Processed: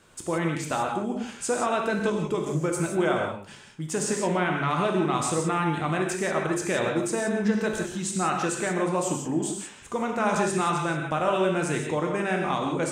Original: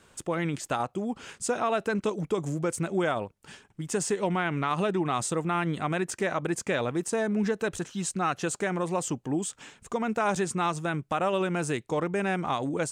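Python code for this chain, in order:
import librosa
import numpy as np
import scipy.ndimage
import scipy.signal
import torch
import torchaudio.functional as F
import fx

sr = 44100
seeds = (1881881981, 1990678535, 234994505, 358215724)

p1 = x + fx.echo_single(x, sr, ms=125, db=-18.0, dry=0)
y = fx.rev_gated(p1, sr, seeds[0], gate_ms=200, shape='flat', drr_db=0.5)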